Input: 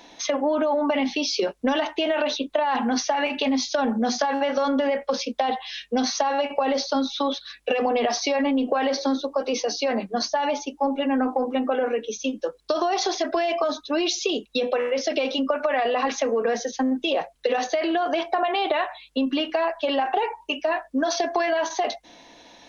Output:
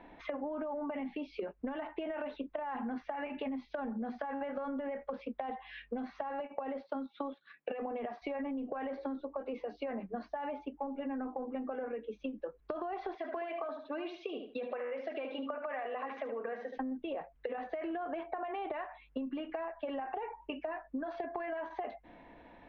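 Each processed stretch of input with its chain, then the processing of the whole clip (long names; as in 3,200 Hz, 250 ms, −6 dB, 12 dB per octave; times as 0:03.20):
0:06.40–0:08.22: high-pass filter 150 Hz 24 dB per octave + transient designer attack +2 dB, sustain −7 dB
0:13.15–0:16.78: high-pass filter 590 Hz 6 dB per octave + repeating echo 74 ms, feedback 22%, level −8 dB
whole clip: low-pass filter 2,200 Hz 24 dB per octave; low-shelf EQ 130 Hz +12 dB; downward compressor 6 to 1, threshold −30 dBFS; level −6 dB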